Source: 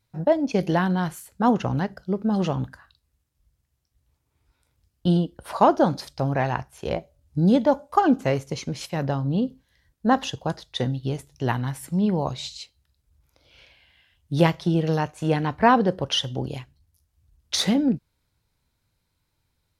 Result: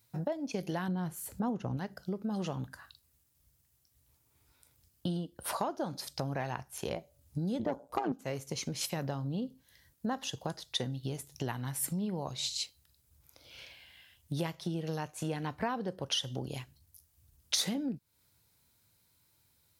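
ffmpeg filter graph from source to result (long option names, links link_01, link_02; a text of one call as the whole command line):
ffmpeg -i in.wav -filter_complex "[0:a]asettb=1/sr,asplit=3[link_01][link_02][link_03];[link_01]atrim=end=0.884[link_04];[link_02]atrim=start=0.88:end=1.77,asetpts=PTS-STARTPTS,afade=type=in:duration=0.004:curve=qsin,afade=type=out:start_time=0.886:duration=0.004:curve=qsin,tiltshelf=frequency=890:gain=6,acompressor=mode=upward:threshold=-38dB:ratio=2.5:attack=3.2:release=140:knee=2.83:detection=peak[link_05];[link_03]atrim=start=1.766[link_06];[link_04][link_05]acrossfade=duration=0.004:curve1=hsin:curve2=qsin[link_07];[link_07][link_06]acrossfade=duration=0.004:curve1=qsin:curve2=hsin,asettb=1/sr,asplit=3[link_08][link_09][link_10];[link_08]atrim=end=7.594[link_11];[link_09]atrim=start=7.59:end=8.12,asetpts=PTS-STARTPTS,afade=type=in:duration=0.004:curve=qsin,afade=type=out:start_time=0.526:duration=0.004:curve=qsin,tiltshelf=frequency=1400:gain=5.5,acontrast=88,tremolo=f=120:d=0.824[link_12];[link_10]atrim=start=8.116[link_13];[link_11][link_12]acrossfade=duration=0.004:curve1=hsin:curve2=qsin[link_14];[link_14][link_13]acrossfade=duration=0.004:curve1=qsin:curve2=hsin,acompressor=threshold=-35dB:ratio=4,highpass=76,aemphasis=mode=production:type=50kf" out.wav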